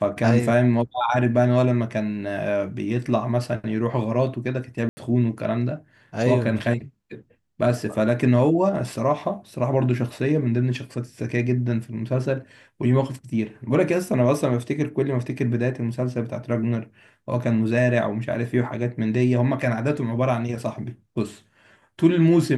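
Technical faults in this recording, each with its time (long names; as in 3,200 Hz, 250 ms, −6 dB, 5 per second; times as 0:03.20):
0:04.89–0:04.97: drop-out 80 ms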